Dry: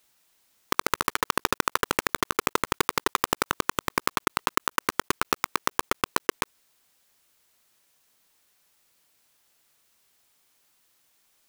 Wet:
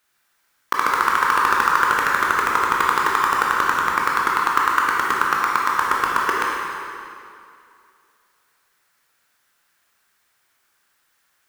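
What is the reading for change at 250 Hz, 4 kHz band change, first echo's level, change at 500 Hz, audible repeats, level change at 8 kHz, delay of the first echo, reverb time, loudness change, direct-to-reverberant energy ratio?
-0.5 dB, +0.5 dB, no echo, +0.5 dB, no echo, -1.0 dB, no echo, 2.5 s, +8.5 dB, -3.5 dB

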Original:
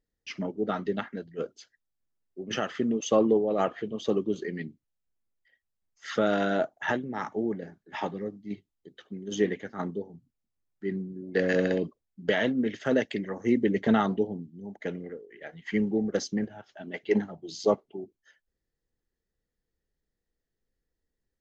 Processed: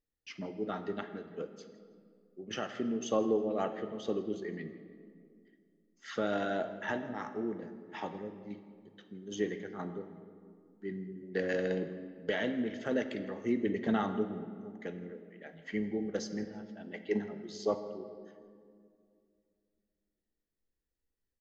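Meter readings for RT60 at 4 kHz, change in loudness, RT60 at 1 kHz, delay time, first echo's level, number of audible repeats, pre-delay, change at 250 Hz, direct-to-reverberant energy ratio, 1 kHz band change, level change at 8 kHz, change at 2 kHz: 1.3 s, -7.0 dB, 2.0 s, 163 ms, -19.5 dB, 1, 3 ms, -7.0 dB, 8.0 dB, -6.5 dB, no reading, -7.0 dB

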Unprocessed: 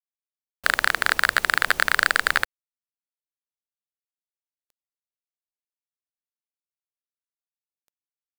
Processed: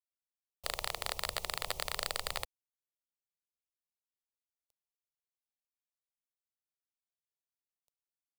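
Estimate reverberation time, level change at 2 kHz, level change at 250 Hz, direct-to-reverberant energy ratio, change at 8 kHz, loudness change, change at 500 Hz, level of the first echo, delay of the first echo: no reverb, -23.5 dB, -15.5 dB, no reverb, -8.5 dB, -16.5 dB, -8.0 dB, no echo, no echo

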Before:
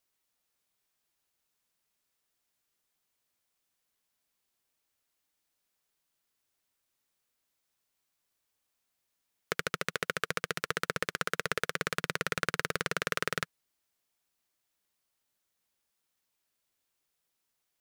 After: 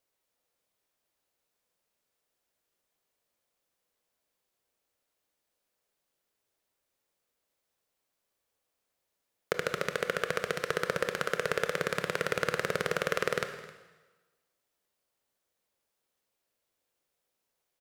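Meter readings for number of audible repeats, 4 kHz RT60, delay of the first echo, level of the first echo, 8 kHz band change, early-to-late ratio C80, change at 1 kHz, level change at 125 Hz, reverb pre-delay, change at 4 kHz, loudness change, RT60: 1, 1.1 s, 263 ms, -19.5 dB, -2.0 dB, 10.5 dB, +1.0 dB, +1.0 dB, 22 ms, -1.5 dB, +1.5 dB, 1.2 s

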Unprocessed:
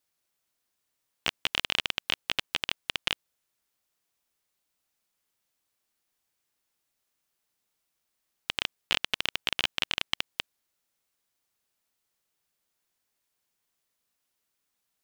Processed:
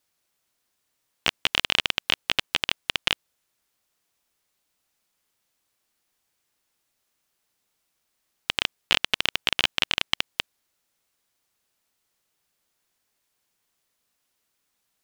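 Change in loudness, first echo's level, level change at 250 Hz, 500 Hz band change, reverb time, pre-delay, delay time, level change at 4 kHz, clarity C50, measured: +5.5 dB, no echo, +5.5 dB, +5.5 dB, no reverb, no reverb, no echo, +5.5 dB, no reverb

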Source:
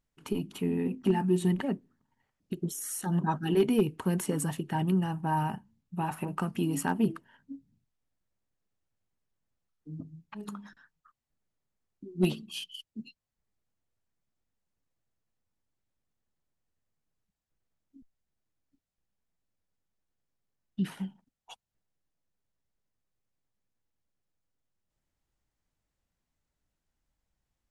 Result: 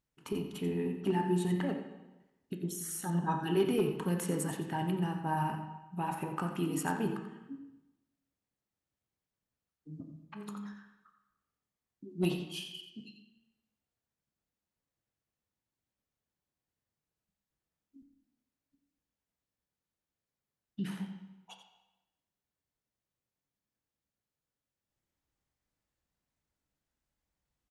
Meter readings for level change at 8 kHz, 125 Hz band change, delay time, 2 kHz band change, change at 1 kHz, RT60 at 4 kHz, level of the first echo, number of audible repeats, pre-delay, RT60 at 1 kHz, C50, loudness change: -3.0 dB, -4.0 dB, 88 ms, -2.0 dB, -2.0 dB, 0.95 s, -10.5 dB, 1, 6 ms, 0.95 s, 5.5 dB, -4.0 dB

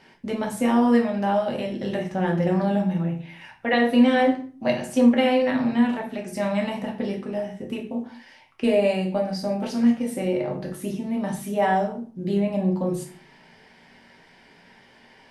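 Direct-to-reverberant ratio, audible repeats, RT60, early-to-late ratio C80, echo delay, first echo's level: 1.0 dB, no echo, 0.45 s, 15.5 dB, no echo, no echo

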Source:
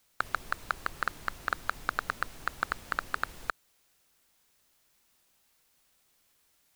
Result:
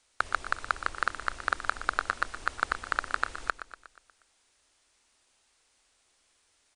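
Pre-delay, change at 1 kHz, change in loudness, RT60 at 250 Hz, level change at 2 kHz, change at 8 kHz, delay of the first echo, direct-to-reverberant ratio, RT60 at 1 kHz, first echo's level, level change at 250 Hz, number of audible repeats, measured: no reverb, +3.0 dB, +3.0 dB, no reverb, +3.5 dB, +3.0 dB, 120 ms, no reverb, no reverb, -12.5 dB, 0.0 dB, 5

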